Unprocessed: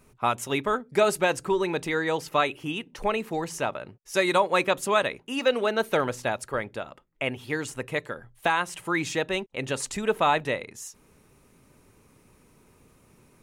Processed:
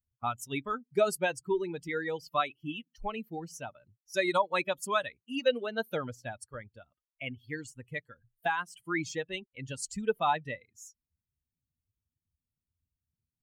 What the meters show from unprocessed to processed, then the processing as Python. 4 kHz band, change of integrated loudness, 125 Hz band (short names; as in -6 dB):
-7.5 dB, -6.5 dB, -6.5 dB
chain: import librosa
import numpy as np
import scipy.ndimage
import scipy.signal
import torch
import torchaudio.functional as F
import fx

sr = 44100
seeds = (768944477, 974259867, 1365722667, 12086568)

y = fx.bin_expand(x, sr, power=2.0)
y = y * 10.0 ** (-2.0 / 20.0)